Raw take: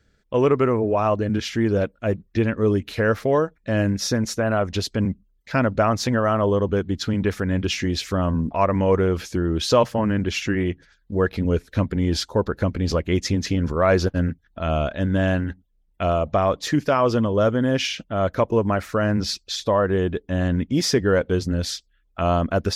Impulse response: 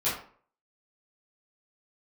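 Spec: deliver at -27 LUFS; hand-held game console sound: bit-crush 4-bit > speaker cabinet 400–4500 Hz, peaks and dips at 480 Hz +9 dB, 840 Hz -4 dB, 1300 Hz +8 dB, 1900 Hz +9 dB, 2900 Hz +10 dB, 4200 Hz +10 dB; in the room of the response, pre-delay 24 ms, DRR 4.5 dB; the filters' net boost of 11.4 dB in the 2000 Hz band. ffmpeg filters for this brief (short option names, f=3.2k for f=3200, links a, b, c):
-filter_complex "[0:a]equalizer=f=2k:t=o:g=5.5,asplit=2[a][b];[1:a]atrim=start_sample=2205,adelay=24[c];[b][c]afir=irnorm=-1:irlink=0,volume=-14dB[d];[a][d]amix=inputs=2:normalize=0,acrusher=bits=3:mix=0:aa=0.000001,highpass=400,equalizer=f=480:t=q:w=4:g=9,equalizer=f=840:t=q:w=4:g=-4,equalizer=f=1.3k:t=q:w=4:g=8,equalizer=f=1.9k:t=q:w=4:g=9,equalizer=f=2.9k:t=q:w=4:g=10,equalizer=f=4.2k:t=q:w=4:g=10,lowpass=f=4.5k:w=0.5412,lowpass=f=4.5k:w=1.3066,volume=-11dB"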